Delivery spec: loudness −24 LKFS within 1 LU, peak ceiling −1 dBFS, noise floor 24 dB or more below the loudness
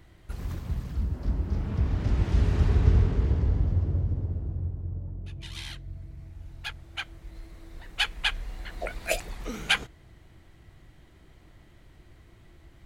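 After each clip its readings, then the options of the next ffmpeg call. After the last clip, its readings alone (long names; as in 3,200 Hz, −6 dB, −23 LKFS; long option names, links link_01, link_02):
integrated loudness −29.0 LKFS; sample peak −7.5 dBFS; target loudness −24.0 LKFS
→ -af "volume=5dB"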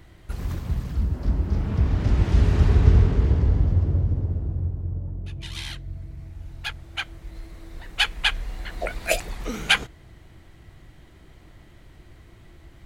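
integrated loudness −24.0 LKFS; sample peak −2.5 dBFS; background noise floor −50 dBFS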